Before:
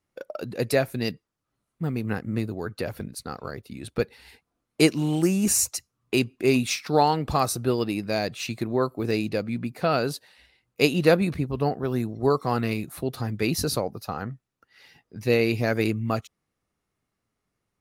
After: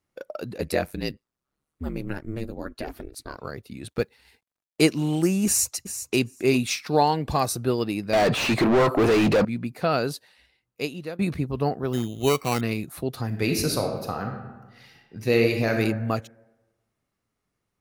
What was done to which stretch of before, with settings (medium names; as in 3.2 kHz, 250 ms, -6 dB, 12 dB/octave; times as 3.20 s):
0.57–3.36 s: ring modulator 39 Hz -> 210 Hz
3.88–4.86 s: companding laws mixed up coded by A
5.46–6.18 s: echo throw 390 ms, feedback 10%, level -11 dB
6.88–7.51 s: Butterworth band-stop 1.3 kHz, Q 6.5
8.13–9.45 s: overdrive pedal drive 39 dB, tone 1.3 kHz, clips at -11 dBFS
10.04–11.19 s: fade out, to -22 dB
11.93–12.61 s: sample-rate reducer 3.4 kHz
13.26–15.72 s: reverb throw, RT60 1.2 s, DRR 3 dB